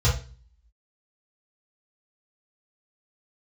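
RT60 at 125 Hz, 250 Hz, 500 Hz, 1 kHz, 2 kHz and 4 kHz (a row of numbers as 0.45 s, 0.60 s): 0.55 s, 0.50 s, 0.40 s, 0.35 s, 0.35 s, 0.40 s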